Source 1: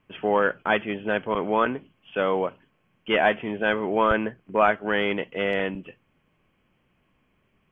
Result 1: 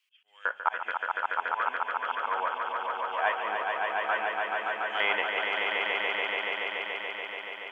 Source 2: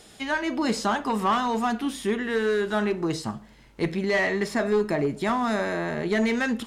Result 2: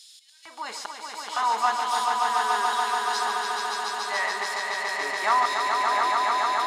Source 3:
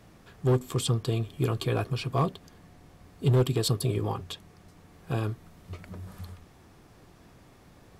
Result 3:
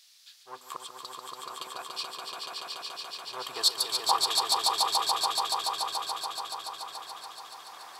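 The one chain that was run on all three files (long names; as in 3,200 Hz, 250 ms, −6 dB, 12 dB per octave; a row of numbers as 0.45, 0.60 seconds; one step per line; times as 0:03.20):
volume swells 748 ms
auto-filter high-pass square 1.1 Hz 960–4,200 Hz
echo that builds up and dies away 143 ms, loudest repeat 5, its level −4 dB
normalise the peak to −9 dBFS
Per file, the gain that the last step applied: +3.5, −0.5, +5.5 decibels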